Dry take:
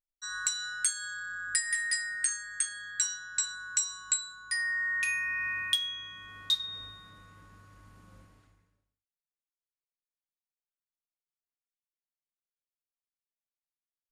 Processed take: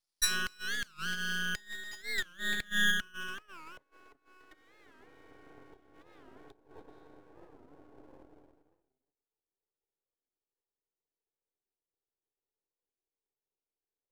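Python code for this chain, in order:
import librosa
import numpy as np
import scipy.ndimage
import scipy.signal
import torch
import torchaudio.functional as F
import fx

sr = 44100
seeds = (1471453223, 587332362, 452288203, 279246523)

p1 = scipy.signal.sosfilt(scipy.signal.butter(2, 9200.0, 'lowpass', fs=sr, output='sos'), x)
p2 = np.clip(10.0 ** (28.5 / 20.0) * p1, -1.0, 1.0) / 10.0 ** (28.5 / 20.0)
p3 = p1 + F.gain(torch.from_numpy(p2), -3.0).numpy()
p4 = scipy.signal.sosfilt(scipy.signal.butter(12, 260.0, 'highpass', fs=sr, output='sos'), p3)
p5 = p4 + fx.echo_single(p4, sr, ms=286, db=-9.5, dry=0)
p6 = fx.env_lowpass_down(p5, sr, base_hz=800.0, full_db=-26.0)
p7 = fx.transient(p6, sr, attack_db=3, sustain_db=-10)
p8 = fx.filter_sweep_lowpass(p7, sr, from_hz=5000.0, to_hz=430.0, start_s=1.97, end_s=4.03, q=3.8)
p9 = np.maximum(p8, 0.0)
p10 = fx.high_shelf(p9, sr, hz=7100.0, db=11.0)
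p11 = fx.record_warp(p10, sr, rpm=45.0, depth_cents=250.0)
y = F.gain(torch.from_numpy(p11), 3.0).numpy()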